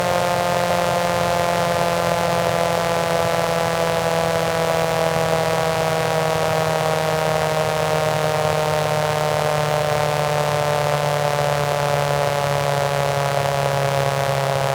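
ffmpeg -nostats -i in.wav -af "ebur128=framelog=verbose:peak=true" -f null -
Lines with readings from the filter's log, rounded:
Integrated loudness:
  I:         -19.5 LUFS
  Threshold: -29.5 LUFS
Loudness range:
  LRA:         0.5 LU
  Threshold: -39.5 LUFS
  LRA low:   -19.7 LUFS
  LRA high:  -19.2 LUFS
True peak:
  Peak:       -3.3 dBFS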